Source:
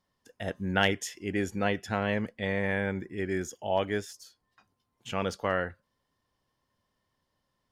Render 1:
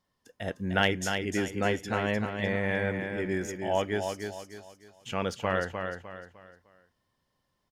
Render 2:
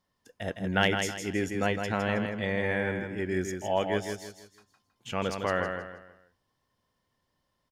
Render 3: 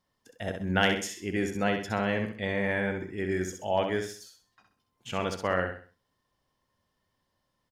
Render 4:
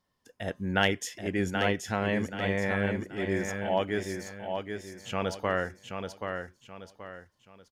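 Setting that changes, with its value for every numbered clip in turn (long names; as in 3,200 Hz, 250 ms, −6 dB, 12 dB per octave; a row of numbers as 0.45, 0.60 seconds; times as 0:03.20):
repeating echo, delay time: 303, 160, 65, 779 milliseconds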